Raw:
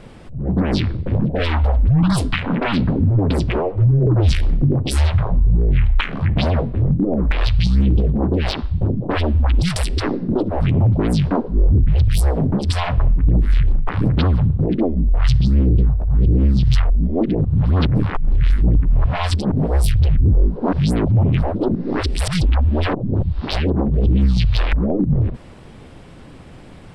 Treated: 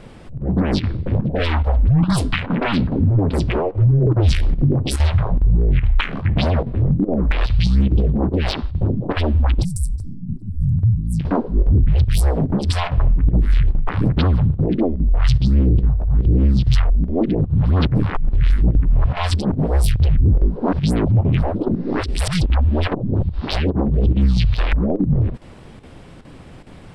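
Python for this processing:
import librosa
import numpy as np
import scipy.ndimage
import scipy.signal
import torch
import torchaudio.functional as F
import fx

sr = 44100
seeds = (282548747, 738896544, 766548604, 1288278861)

y = fx.cheby2_bandstop(x, sr, low_hz=490.0, high_hz=2800.0, order=4, stop_db=60, at=(9.63, 11.19), fade=0.02)
y = fx.chopper(y, sr, hz=2.4, depth_pct=65, duty_pct=90)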